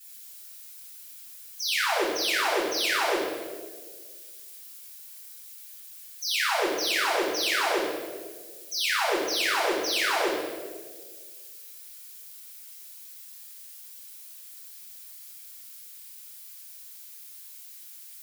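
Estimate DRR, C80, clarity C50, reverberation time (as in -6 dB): -9.5 dB, 3.0 dB, 0.0 dB, 1.6 s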